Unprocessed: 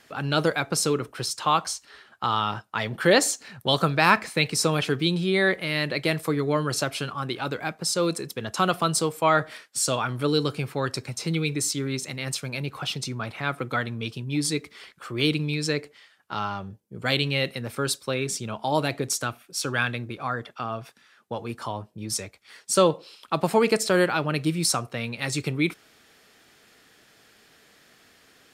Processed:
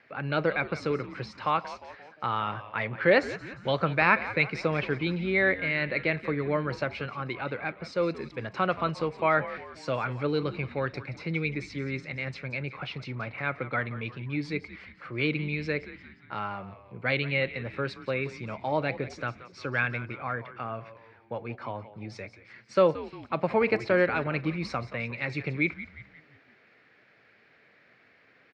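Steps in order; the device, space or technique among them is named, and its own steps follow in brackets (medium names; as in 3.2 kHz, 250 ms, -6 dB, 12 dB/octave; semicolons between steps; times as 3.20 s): frequency-shifting delay pedal into a guitar cabinet (frequency-shifting echo 176 ms, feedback 50%, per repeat -110 Hz, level -14.5 dB; cabinet simulation 86–3700 Hz, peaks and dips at 120 Hz +4 dB, 550 Hz +5 dB, 1.6 kHz +3 dB, 2.2 kHz +9 dB, 3.3 kHz -9 dB); trim -5.5 dB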